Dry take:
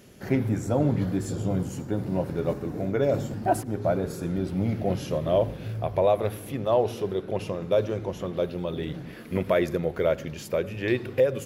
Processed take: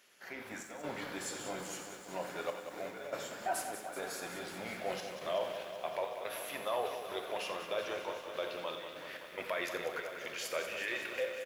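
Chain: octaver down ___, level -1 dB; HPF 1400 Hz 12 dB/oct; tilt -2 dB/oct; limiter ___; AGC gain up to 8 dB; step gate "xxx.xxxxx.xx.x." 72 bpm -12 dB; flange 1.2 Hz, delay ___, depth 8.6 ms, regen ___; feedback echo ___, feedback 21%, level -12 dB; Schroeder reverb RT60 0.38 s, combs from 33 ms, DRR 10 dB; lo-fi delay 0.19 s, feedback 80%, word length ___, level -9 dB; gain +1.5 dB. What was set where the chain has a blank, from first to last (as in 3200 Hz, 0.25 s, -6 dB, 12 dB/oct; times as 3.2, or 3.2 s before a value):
2 oct, -31 dBFS, 3.7 ms, -69%, 87 ms, 10-bit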